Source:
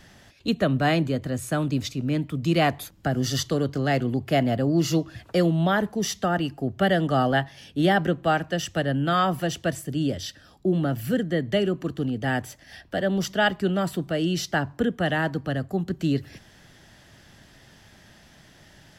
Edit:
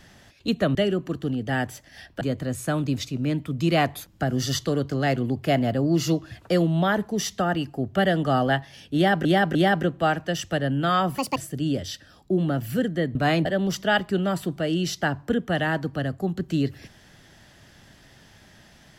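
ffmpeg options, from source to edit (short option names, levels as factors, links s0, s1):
-filter_complex "[0:a]asplit=9[s0][s1][s2][s3][s4][s5][s6][s7][s8];[s0]atrim=end=0.752[s9];[s1]atrim=start=11.498:end=12.962[s10];[s2]atrim=start=1.048:end=8.092[s11];[s3]atrim=start=7.788:end=8.092[s12];[s4]atrim=start=7.788:end=9.424[s13];[s5]atrim=start=9.42:end=9.71,asetpts=PTS-STARTPTS,asetrate=70119,aresample=44100,atrim=end_sample=8043,asetpts=PTS-STARTPTS[s14];[s6]atrim=start=9.706:end=11.502[s15];[s7]atrim=start=0.748:end=1.052[s16];[s8]atrim=start=12.958[s17];[s9][s10]acrossfade=d=0.004:c1=hsin:c2=hsin[s18];[s18][s11]acrossfade=d=0.004:c1=hsin:c2=hsin[s19];[s19][s12]acrossfade=d=0.004:c1=hsin:c2=hsin[s20];[s20][s13]acrossfade=d=0.004:c1=hsin:c2=hsin[s21];[s21][s14]acrossfade=d=0.004:c1=hsin:c2=hsin[s22];[s22][s15]acrossfade=d=0.004:c1=hsin:c2=hsin[s23];[s23][s16]acrossfade=d=0.004:c1=hsin:c2=hsin[s24];[s24][s17]acrossfade=d=0.004:c1=hsin:c2=hsin"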